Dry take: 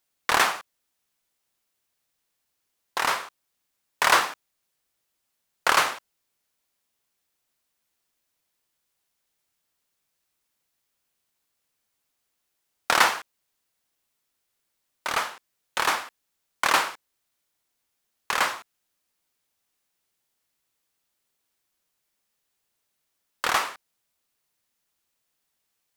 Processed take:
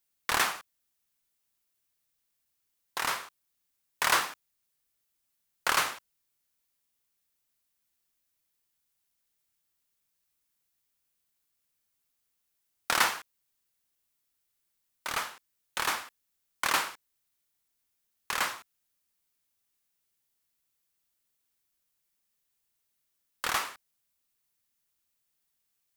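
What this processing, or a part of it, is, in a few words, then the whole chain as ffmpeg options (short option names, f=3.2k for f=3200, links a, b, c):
smiley-face EQ: -af "lowshelf=f=130:g=5,equalizer=f=620:t=o:w=1.7:g=-3.5,highshelf=f=9.2k:g=7,volume=-5.5dB"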